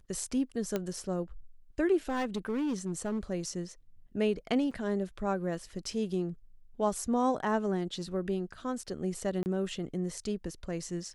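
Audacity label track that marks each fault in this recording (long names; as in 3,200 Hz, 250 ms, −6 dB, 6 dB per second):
0.760000	0.760000	click −17 dBFS
2.090000	3.190000	clipping −28 dBFS
4.710000	4.720000	drop-out 5.4 ms
9.430000	9.460000	drop-out 29 ms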